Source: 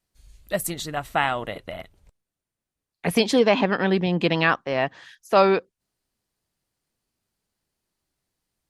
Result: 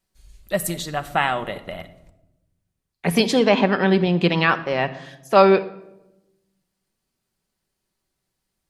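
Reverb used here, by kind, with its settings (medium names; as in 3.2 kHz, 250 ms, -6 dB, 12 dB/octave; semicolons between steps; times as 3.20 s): simulated room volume 3500 m³, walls furnished, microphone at 1.1 m; trim +1.5 dB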